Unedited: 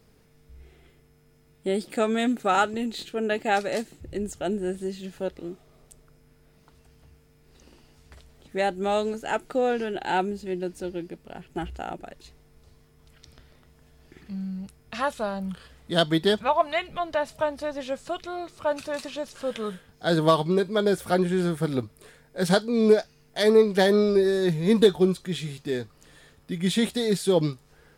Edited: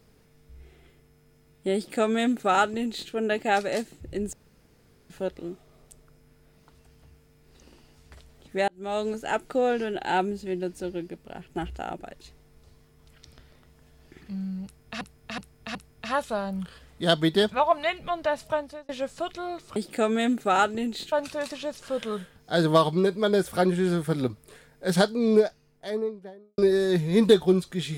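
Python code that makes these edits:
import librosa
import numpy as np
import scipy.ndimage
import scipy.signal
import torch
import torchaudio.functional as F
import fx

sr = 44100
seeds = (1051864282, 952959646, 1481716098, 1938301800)

y = fx.studio_fade_out(x, sr, start_s=22.49, length_s=1.62)
y = fx.edit(y, sr, fx.duplicate(start_s=1.75, length_s=1.36, to_s=18.65),
    fx.room_tone_fill(start_s=4.33, length_s=0.77),
    fx.fade_in_span(start_s=8.68, length_s=0.44),
    fx.repeat(start_s=14.64, length_s=0.37, count=4),
    fx.fade_out_span(start_s=17.39, length_s=0.39), tone=tone)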